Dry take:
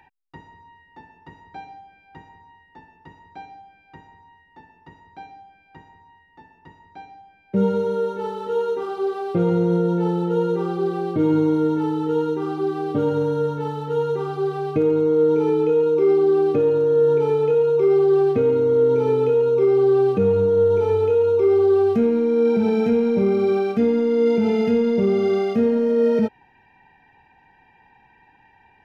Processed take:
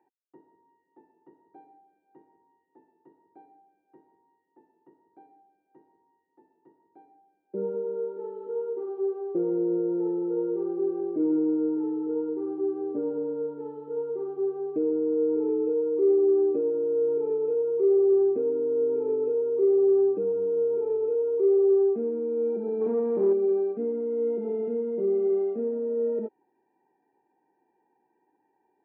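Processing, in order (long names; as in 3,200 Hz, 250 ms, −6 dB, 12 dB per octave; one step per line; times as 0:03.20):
0:22.81–0:23.33: leveller curve on the samples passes 2
four-pole ladder band-pass 390 Hz, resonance 60%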